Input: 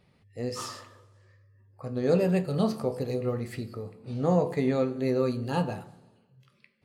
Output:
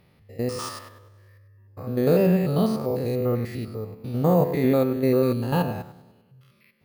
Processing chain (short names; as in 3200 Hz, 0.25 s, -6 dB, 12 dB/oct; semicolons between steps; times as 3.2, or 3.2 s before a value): stepped spectrum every 0.1 s; careless resampling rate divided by 3×, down filtered, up hold; gain +6.5 dB